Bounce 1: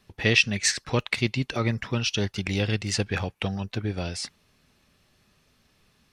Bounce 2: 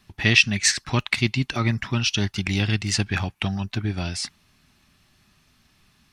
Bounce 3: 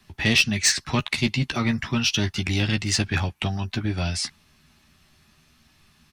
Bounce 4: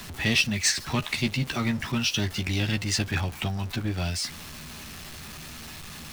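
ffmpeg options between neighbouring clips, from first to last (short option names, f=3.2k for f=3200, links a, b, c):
-af "equalizer=f=490:w=3.2:g=-15,volume=4dB"
-filter_complex "[0:a]acrossover=split=120|1200|2400[a][b][c][d];[c]alimiter=limit=-22dB:level=0:latency=1:release=315[e];[a][b][e][d]amix=inputs=4:normalize=0,asoftclip=type=tanh:threshold=-11.5dB,asplit=2[f][g];[g]adelay=13,volume=-6.5dB[h];[f][h]amix=inputs=2:normalize=0,volume=1dB"
-af "aeval=exprs='val(0)+0.5*0.0282*sgn(val(0))':c=same,volume=-4.5dB"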